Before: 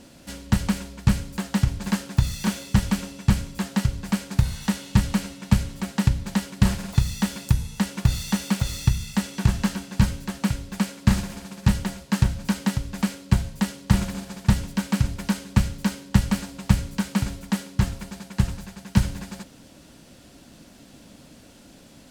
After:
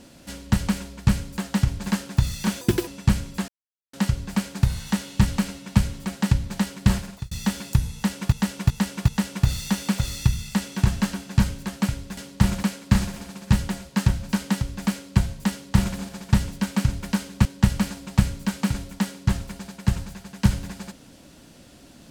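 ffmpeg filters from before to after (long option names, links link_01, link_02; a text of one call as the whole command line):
ffmpeg -i in.wav -filter_complex "[0:a]asplit=11[link_01][link_02][link_03][link_04][link_05][link_06][link_07][link_08][link_09][link_10][link_11];[link_01]atrim=end=2.614[link_12];[link_02]atrim=start=2.61:end=3.08,asetpts=PTS-STARTPTS,asetrate=78939,aresample=44100,atrim=end_sample=11579,asetpts=PTS-STARTPTS[link_13];[link_03]atrim=start=3.076:end=3.69,asetpts=PTS-STARTPTS,afade=type=out:start_time=0.61:duration=0.004:curve=hsin,apad=pad_dur=0.45[link_14];[link_04]atrim=start=3.69:end=7.07,asetpts=PTS-STARTPTS,afade=type=in:duration=0.004:curve=hsin,afade=type=out:start_time=2.99:duration=0.39[link_15];[link_05]atrim=start=7.07:end=8.082,asetpts=PTS-STARTPTS,afade=type=in:duration=0.004:curve=hsin[link_16];[link_06]atrim=start=7.698:end=8.082[link_17];[link_07]atrim=start=7.698:end=8.082[link_18];[link_08]atrim=start=7.698:end=10.792[link_19];[link_09]atrim=start=13.668:end=14.132[link_20];[link_10]atrim=start=10.788:end=15.612[link_21];[link_11]atrim=start=15.968[link_22];[link_12][link_13]acrossfade=duration=0.004:curve1=hsin:curve2=hsin[link_23];[link_14][link_15][link_16]concat=n=3:v=0:a=1[link_24];[link_23][link_24]acrossfade=duration=0.004:curve1=hsin:curve2=hsin[link_25];[link_25][link_17]acrossfade=duration=0.004:curve1=hsin:curve2=hsin[link_26];[link_26][link_18]acrossfade=duration=0.004:curve1=hsin:curve2=hsin[link_27];[link_27][link_19]acrossfade=duration=0.004:curve1=hsin:curve2=hsin[link_28];[link_28][link_20]acrossfade=duration=0.004:curve1=hsin:curve2=hsin[link_29];[link_29][link_21]acrossfade=duration=0.004:curve1=hsin:curve2=hsin[link_30];[link_30][link_22]acrossfade=duration=0.004:curve1=hsin:curve2=hsin" out.wav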